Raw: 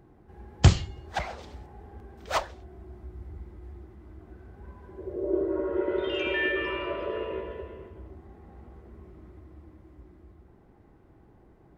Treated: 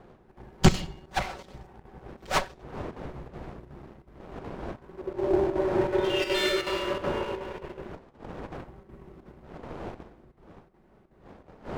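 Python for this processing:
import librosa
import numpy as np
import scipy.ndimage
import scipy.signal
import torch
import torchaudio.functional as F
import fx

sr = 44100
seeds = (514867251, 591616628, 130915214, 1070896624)

y = fx.lower_of_two(x, sr, delay_ms=5.3)
y = fx.dmg_wind(y, sr, seeds[0], corner_hz=600.0, level_db=-45.0)
y = fx.leveller(y, sr, passes=1)
y = fx.over_compress(y, sr, threshold_db=-40.0, ratio=-0.5, at=(7.54, 9.32))
y = fx.chopper(y, sr, hz=2.7, depth_pct=60, duty_pct=85)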